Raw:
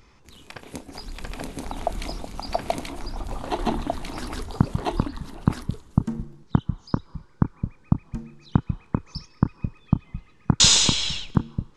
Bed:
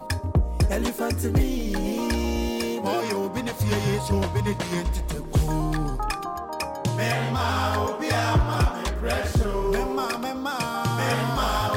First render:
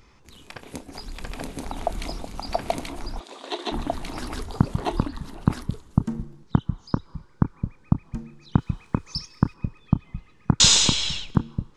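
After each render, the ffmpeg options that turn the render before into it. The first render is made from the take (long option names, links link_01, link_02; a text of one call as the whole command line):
ffmpeg -i in.wav -filter_complex "[0:a]asplit=3[link_01][link_02][link_03];[link_01]afade=type=out:start_time=3.19:duration=0.02[link_04];[link_02]highpass=frequency=340:width=0.5412,highpass=frequency=340:width=1.3066,equalizer=frequency=540:width_type=q:width=4:gain=-5,equalizer=frequency=820:width_type=q:width=4:gain=-9,equalizer=frequency=1300:width_type=q:width=4:gain=-6,equalizer=frequency=3700:width_type=q:width=4:gain=9,lowpass=frequency=9100:width=0.5412,lowpass=frequency=9100:width=1.3066,afade=type=in:start_time=3.19:duration=0.02,afade=type=out:start_time=3.71:duration=0.02[link_05];[link_03]afade=type=in:start_time=3.71:duration=0.02[link_06];[link_04][link_05][link_06]amix=inputs=3:normalize=0,asettb=1/sr,asplit=3[link_07][link_08][link_09];[link_07]atrim=end=8.584[link_10];[link_08]atrim=start=8.58:end=9.54,asetpts=PTS-STARTPTS,afade=type=in:duration=0.004:curve=qsin,afade=type=out:start_time=0.956:duration=0.004:curve=qsin,highshelf=frequency=2900:gain=11[link_11];[link_09]atrim=start=9.536[link_12];[link_10][link_11]acrossfade=duration=0.004:curve1=hsin:curve2=qsin[link_13];[link_13][link_12]acrossfade=duration=0.004:curve1=qsin:curve2=hsin" out.wav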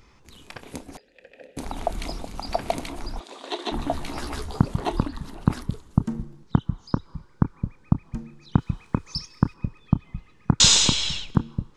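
ffmpeg -i in.wav -filter_complex "[0:a]asettb=1/sr,asplit=3[link_01][link_02][link_03];[link_01]atrim=end=0.974[link_04];[link_02]atrim=start=0.97:end=1.57,asetpts=PTS-STARTPTS,afade=type=in:duration=0.004:curve=qsin,afade=type=out:start_time=0.596:duration=0.004:curve=qsin,asplit=3[link_05][link_06][link_07];[link_05]bandpass=frequency=530:width_type=q:width=8,volume=0dB[link_08];[link_06]bandpass=frequency=1840:width_type=q:width=8,volume=-6dB[link_09];[link_07]bandpass=frequency=2480:width_type=q:width=8,volume=-9dB[link_10];[link_08][link_09][link_10]amix=inputs=3:normalize=0[link_11];[link_03]atrim=start=1.566[link_12];[link_04][link_11]acrossfade=duration=0.004:curve1=hsin:curve2=qsin[link_13];[link_13][link_12]acrossfade=duration=0.004:curve1=qsin:curve2=hsin,asettb=1/sr,asplit=3[link_14][link_15][link_16];[link_14]atrim=end=3.814[link_17];[link_15]atrim=start=3.81:end=4.6,asetpts=PTS-STARTPTS,afade=type=in:duration=0.004:curve=qsin,afade=type=out:start_time=0.786:duration=0.004:curve=qsin,asplit=2[link_18][link_19];[link_19]adelay=14,volume=-5dB[link_20];[link_18][link_20]amix=inputs=2:normalize=0,atrim=end_sample=34839[link_21];[link_16]atrim=start=4.596[link_22];[link_17][link_21]acrossfade=duration=0.004:curve1=hsin:curve2=qsin[link_23];[link_23][link_22]acrossfade=duration=0.004:curve1=qsin:curve2=hsin" out.wav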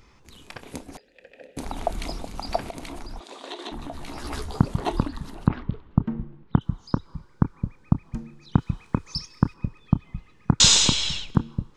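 ffmpeg -i in.wav -filter_complex "[0:a]asettb=1/sr,asplit=3[link_01][link_02][link_03];[link_01]atrim=end=2.674[link_04];[link_02]atrim=start=2.67:end=4.25,asetpts=PTS-STARTPTS,afade=type=in:duration=0.004:curve=qsin,afade=type=out:start_time=1.576:duration=0.004:curve=qsin,acompressor=threshold=-31dB:ratio=6:attack=3.2:release=140:knee=1:detection=peak[link_05];[link_03]atrim=start=4.246[link_06];[link_04][link_05]acrossfade=duration=0.004:curve1=hsin:curve2=qsin[link_07];[link_07][link_06]acrossfade=duration=0.004:curve1=qsin:curve2=hsin,asettb=1/sr,asplit=3[link_08][link_09][link_10];[link_08]atrim=end=5.474[link_11];[link_09]atrim=start=5.47:end=6.61,asetpts=PTS-STARTPTS,afade=type=in:duration=0.004:curve=qsin,afade=type=out:start_time=1.136:duration=0.004:curve=qsin,lowpass=frequency=3000:width=0.5412,lowpass=frequency=3000:width=1.3066[link_12];[link_10]atrim=start=6.606[link_13];[link_11][link_12]acrossfade=duration=0.004:curve1=hsin:curve2=qsin[link_14];[link_14][link_13]acrossfade=duration=0.004:curve1=qsin:curve2=hsin" out.wav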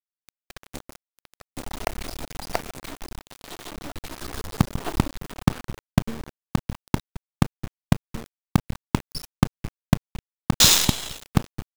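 ffmpeg -i in.wav -af "acrusher=bits=3:dc=4:mix=0:aa=0.000001" out.wav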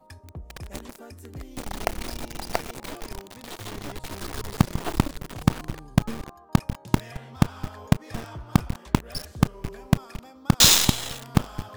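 ffmpeg -i in.wav -i bed.wav -filter_complex "[1:a]volume=-18.5dB[link_01];[0:a][link_01]amix=inputs=2:normalize=0" out.wav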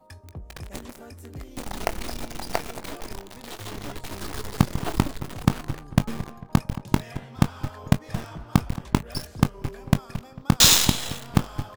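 ffmpeg -i in.wav -filter_complex "[0:a]asplit=2[link_01][link_02];[link_02]adelay=21,volume=-12dB[link_03];[link_01][link_03]amix=inputs=2:normalize=0,asplit=2[link_04][link_05];[link_05]adelay=224,lowpass=frequency=1900:poles=1,volume=-15dB,asplit=2[link_06][link_07];[link_07]adelay=224,lowpass=frequency=1900:poles=1,volume=0.42,asplit=2[link_08][link_09];[link_09]adelay=224,lowpass=frequency=1900:poles=1,volume=0.42,asplit=2[link_10][link_11];[link_11]adelay=224,lowpass=frequency=1900:poles=1,volume=0.42[link_12];[link_04][link_06][link_08][link_10][link_12]amix=inputs=5:normalize=0" out.wav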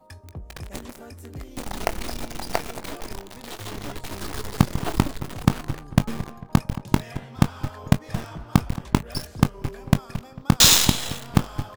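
ffmpeg -i in.wav -af "volume=1.5dB,alimiter=limit=-2dB:level=0:latency=1" out.wav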